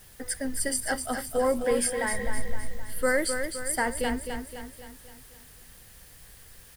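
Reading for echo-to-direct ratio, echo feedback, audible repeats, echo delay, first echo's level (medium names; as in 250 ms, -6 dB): -5.5 dB, 50%, 5, 259 ms, -7.0 dB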